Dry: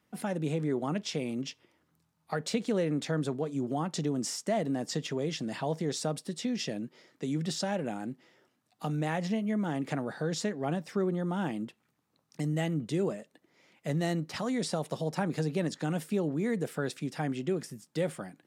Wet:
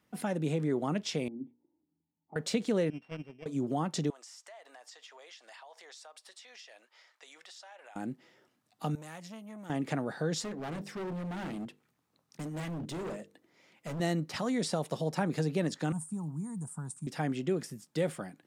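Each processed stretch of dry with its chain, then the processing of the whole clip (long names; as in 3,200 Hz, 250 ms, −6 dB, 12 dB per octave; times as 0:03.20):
0:01.28–0:02.36: formant resonators in series u + mains-hum notches 60/120/180/240/300/360/420/480/540 Hz
0:02.90–0:03.46: samples sorted by size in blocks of 16 samples + noise gate −28 dBFS, range −19 dB + high-frequency loss of the air 220 metres
0:04.10–0:07.96: high-pass filter 750 Hz 24 dB per octave + high-shelf EQ 9,700 Hz −10 dB + downward compressor, threshold −49 dBFS
0:08.95–0:09.70: first-order pre-emphasis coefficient 0.8 + saturating transformer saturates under 840 Hz
0:10.42–0:14.00: mains-hum notches 50/100/150/200/250/300/350/400/450/500 Hz + hard clipping −35.5 dBFS
0:15.92–0:17.07: drawn EQ curve 120 Hz 0 dB, 180 Hz −2 dB, 350 Hz −19 dB, 530 Hz −28 dB, 940 Hz 0 dB, 2,000 Hz −28 dB, 3,400 Hz −27 dB, 5,100 Hz −18 dB, 9,000 Hz +9 dB, 13,000 Hz −19 dB + floating-point word with a short mantissa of 6 bits
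whole clip: no processing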